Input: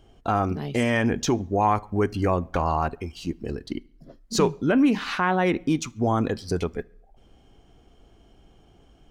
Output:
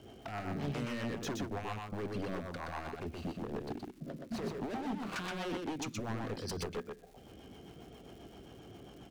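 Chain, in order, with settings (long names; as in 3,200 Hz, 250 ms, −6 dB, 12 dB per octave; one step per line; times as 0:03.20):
0:02.94–0:05.16: running median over 25 samples
high-pass filter 110 Hz 12 dB per octave
high-shelf EQ 6,100 Hz −8.5 dB
downward compressor 8 to 1, threshold −36 dBFS, peak gain reduction 19.5 dB
brickwall limiter −31.5 dBFS, peak gain reduction 7.5 dB
wave folding −38.5 dBFS
rotating-speaker cabinet horn 7.5 Hz
surface crackle 220 per second −59 dBFS
single-tap delay 123 ms −3.5 dB
level +7 dB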